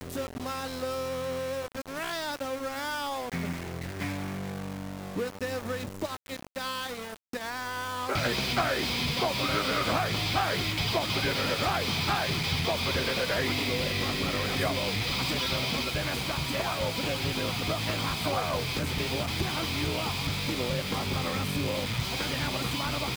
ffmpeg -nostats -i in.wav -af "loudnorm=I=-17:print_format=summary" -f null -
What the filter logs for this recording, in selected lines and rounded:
Input Integrated:    -29.7 LUFS
Input True Peak:     -16.6 dBTP
Input LRA:             7.5 LU
Input Threshold:     -39.7 LUFS